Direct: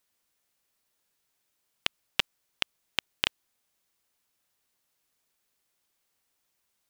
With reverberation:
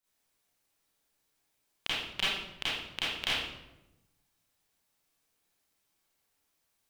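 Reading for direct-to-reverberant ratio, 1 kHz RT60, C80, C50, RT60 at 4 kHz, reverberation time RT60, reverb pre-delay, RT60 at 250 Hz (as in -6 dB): -12.0 dB, 0.85 s, 1.5 dB, -4.5 dB, 0.65 s, 0.95 s, 31 ms, 1.3 s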